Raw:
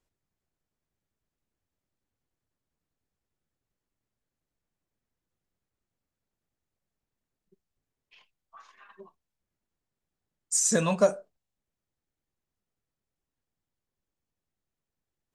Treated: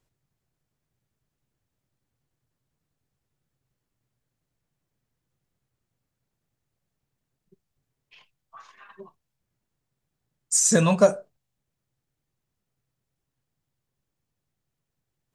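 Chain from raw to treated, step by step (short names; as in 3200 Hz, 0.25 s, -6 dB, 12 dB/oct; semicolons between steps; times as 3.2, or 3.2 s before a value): bell 130 Hz +10.5 dB 0.52 oct; gain +4.5 dB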